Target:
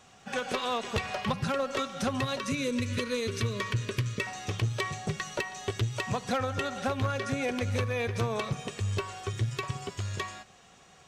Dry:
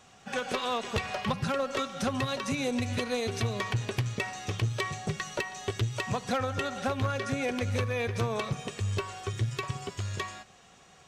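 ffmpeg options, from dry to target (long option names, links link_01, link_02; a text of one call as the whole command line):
ffmpeg -i in.wav -filter_complex "[0:a]asettb=1/sr,asplit=3[link_01][link_02][link_03];[link_01]atrim=end=2.394[link_04];[link_02]atrim=start=2.39:end=4.27,asetpts=PTS-STARTPTS,afade=type=in:duration=0.004:curve=qsin,afade=type=out:start_time=1.876:duration=0.004:curve=qsin,asuperstop=centerf=770:order=4:qfactor=2.1[link_05];[link_03]atrim=start=4.266[link_06];[link_04][link_05]acrossfade=duration=0.004:curve1=hsin:curve2=qsin[link_07];[link_07][link_06]acrossfade=duration=0.004:curve1=qsin:curve2=hsin" out.wav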